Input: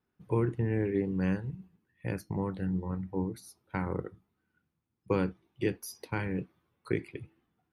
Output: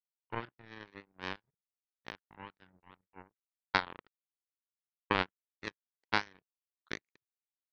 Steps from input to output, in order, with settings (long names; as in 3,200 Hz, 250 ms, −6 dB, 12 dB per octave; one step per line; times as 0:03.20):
linear-phase brick-wall low-pass 7,500 Hz
flat-topped bell 1,300 Hz +15.5 dB
power curve on the samples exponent 3
level +1.5 dB